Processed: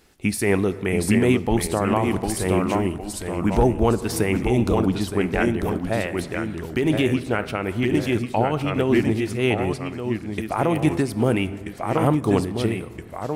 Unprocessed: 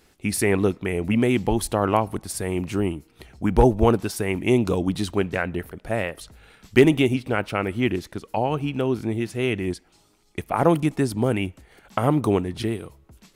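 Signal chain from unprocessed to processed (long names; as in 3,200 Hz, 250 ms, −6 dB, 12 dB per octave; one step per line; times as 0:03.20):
0:04.75–0:05.21: high-frequency loss of the air 79 metres
delay with pitch and tempo change per echo 666 ms, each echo −1 semitone, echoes 2, each echo −6 dB
dense smooth reverb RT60 1.8 s, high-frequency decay 0.5×, DRR 15 dB
boost into a limiter +10 dB
amplitude modulation by smooth noise, depth 65%
level −6 dB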